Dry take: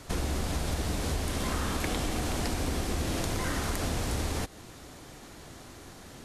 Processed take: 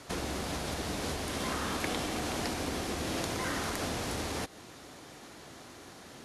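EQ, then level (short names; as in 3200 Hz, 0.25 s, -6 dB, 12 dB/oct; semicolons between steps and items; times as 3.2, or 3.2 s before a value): HPF 210 Hz 6 dB/oct; LPF 12000 Hz 24 dB/oct; bell 8200 Hz -4 dB 0.48 oct; 0.0 dB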